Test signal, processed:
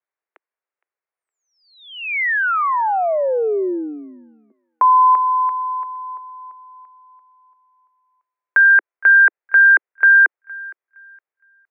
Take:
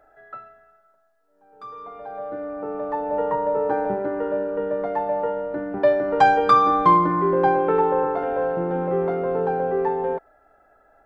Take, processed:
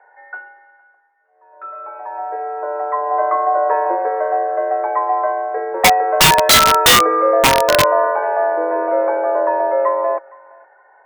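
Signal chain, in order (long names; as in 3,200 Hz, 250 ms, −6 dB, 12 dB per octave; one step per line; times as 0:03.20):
single-sideband voice off tune +150 Hz 200–2,100 Hz
feedback echo with a high-pass in the loop 464 ms, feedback 29%, high-pass 950 Hz, level −21.5 dB
wrap-around overflow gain 11 dB
level +6.5 dB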